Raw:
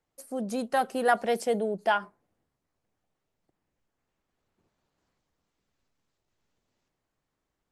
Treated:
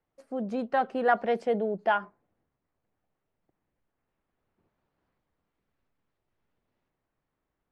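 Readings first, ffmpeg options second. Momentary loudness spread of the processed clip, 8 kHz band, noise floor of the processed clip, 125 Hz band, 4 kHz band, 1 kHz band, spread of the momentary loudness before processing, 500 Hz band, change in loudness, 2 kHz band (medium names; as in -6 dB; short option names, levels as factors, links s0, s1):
8 LU, under -20 dB, -84 dBFS, 0.0 dB, -6.0 dB, 0.0 dB, 8 LU, 0.0 dB, 0.0 dB, -0.5 dB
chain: -af "lowpass=2500"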